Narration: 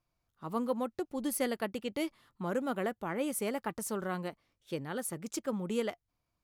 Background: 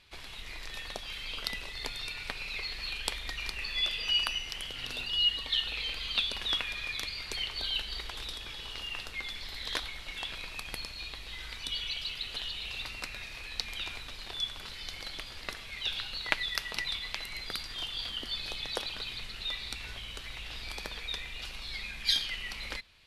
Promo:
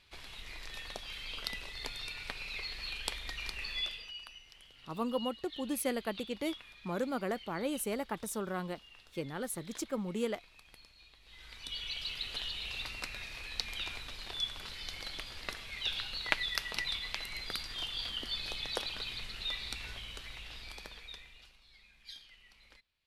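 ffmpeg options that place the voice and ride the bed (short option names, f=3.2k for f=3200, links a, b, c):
-filter_complex "[0:a]adelay=4450,volume=-1.5dB[a];[1:a]volume=13.5dB,afade=t=out:st=3.71:d=0.41:silence=0.177828,afade=t=in:st=11.2:d=0.97:silence=0.141254,afade=t=out:st=19.77:d=1.81:silence=0.0944061[b];[a][b]amix=inputs=2:normalize=0"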